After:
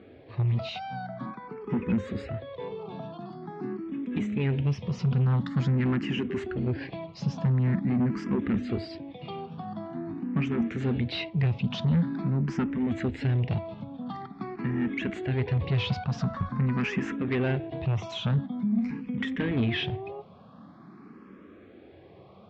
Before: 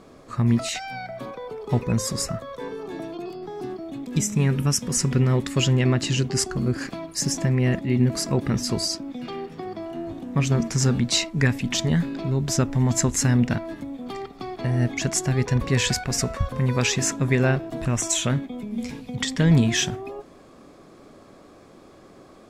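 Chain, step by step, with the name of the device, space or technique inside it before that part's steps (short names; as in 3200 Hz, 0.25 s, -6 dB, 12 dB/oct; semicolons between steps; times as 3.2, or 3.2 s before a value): barber-pole phaser into a guitar amplifier (endless phaser +0.46 Hz; soft clip -23.5 dBFS, distortion -11 dB; speaker cabinet 80–3400 Hz, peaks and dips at 91 Hz +8 dB, 140 Hz +3 dB, 200 Hz +9 dB, 590 Hz -4 dB)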